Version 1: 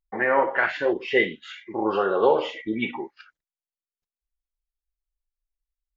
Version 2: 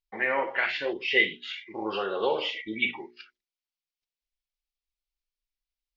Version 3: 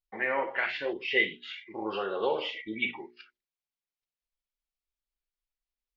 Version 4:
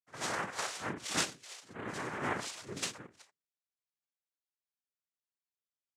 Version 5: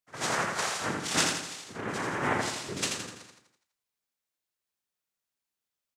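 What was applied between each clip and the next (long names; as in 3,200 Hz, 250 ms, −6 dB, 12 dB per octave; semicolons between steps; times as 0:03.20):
flat-topped bell 3,400 Hz +12 dB; mains-hum notches 60/120/180/240/300/360/420 Hz; level −7.5 dB
high-shelf EQ 4,700 Hz −8.5 dB; level −2 dB
backwards echo 58 ms −14 dB; cochlear-implant simulation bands 3; level −7 dB
repeating echo 83 ms, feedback 50%, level −4.5 dB; level +5.5 dB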